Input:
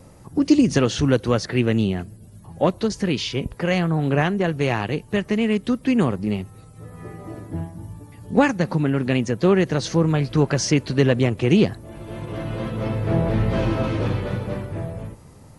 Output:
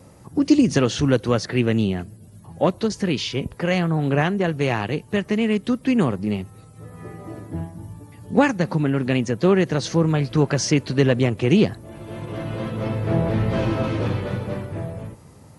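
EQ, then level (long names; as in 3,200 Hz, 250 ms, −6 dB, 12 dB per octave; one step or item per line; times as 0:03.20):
high-pass filter 66 Hz
0.0 dB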